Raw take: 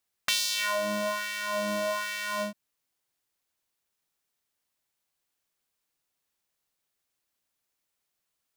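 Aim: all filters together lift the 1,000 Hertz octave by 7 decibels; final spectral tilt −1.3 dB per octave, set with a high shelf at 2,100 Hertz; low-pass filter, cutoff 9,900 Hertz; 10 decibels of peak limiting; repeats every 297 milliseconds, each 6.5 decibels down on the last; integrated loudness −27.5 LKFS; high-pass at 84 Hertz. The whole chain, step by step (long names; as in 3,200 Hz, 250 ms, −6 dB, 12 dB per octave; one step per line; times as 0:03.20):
high-pass filter 84 Hz
low-pass filter 9,900 Hz
parametric band 1,000 Hz +6.5 dB
high-shelf EQ 2,100 Hz +4 dB
brickwall limiter −15.5 dBFS
repeating echo 297 ms, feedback 47%, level −6.5 dB
level −1 dB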